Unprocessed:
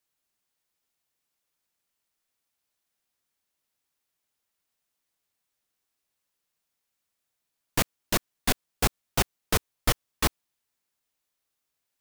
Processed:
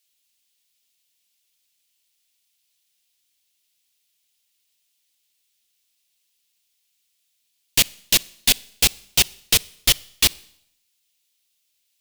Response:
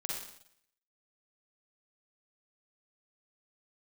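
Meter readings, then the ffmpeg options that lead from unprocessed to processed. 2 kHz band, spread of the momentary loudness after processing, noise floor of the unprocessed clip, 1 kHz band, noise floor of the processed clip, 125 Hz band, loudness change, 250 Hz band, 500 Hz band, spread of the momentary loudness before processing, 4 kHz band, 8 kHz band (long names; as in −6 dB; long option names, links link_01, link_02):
+6.0 dB, 2 LU, −82 dBFS, −4.5 dB, −71 dBFS, −2.0 dB, +9.5 dB, −2.0 dB, −3.0 dB, 2 LU, +13.5 dB, +11.5 dB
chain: -filter_complex "[0:a]highshelf=frequency=2000:width_type=q:width=1.5:gain=13,asplit=2[link_01][link_02];[1:a]atrim=start_sample=2205[link_03];[link_02][link_03]afir=irnorm=-1:irlink=0,volume=-23.5dB[link_04];[link_01][link_04]amix=inputs=2:normalize=0,volume=-2.5dB"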